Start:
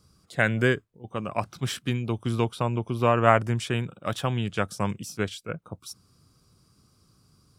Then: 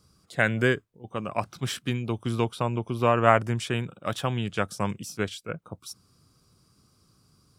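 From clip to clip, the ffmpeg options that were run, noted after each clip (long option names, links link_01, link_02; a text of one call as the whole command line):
ffmpeg -i in.wav -af "lowshelf=frequency=140:gain=-3" out.wav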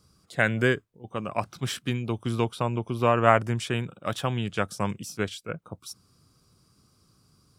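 ffmpeg -i in.wav -af anull out.wav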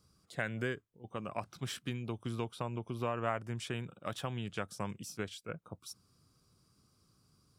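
ffmpeg -i in.wav -af "acompressor=threshold=-29dB:ratio=2,volume=-7dB" out.wav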